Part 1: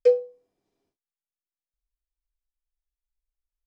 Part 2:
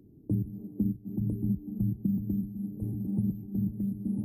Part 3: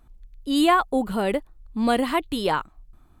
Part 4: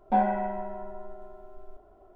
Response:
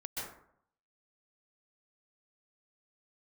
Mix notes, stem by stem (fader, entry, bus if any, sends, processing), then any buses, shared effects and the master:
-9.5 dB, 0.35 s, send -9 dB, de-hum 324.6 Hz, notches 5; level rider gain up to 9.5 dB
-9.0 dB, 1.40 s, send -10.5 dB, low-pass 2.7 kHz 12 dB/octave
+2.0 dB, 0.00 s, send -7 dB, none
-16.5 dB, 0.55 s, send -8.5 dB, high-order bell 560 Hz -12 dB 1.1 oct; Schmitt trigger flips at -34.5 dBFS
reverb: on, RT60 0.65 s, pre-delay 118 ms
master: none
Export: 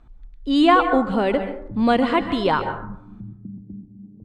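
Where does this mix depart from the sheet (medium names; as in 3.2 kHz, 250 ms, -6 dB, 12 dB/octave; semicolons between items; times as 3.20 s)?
stem 1: entry 0.35 s -> 0.70 s; stem 4: entry 0.55 s -> 0.80 s; master: extra distance through air 130 m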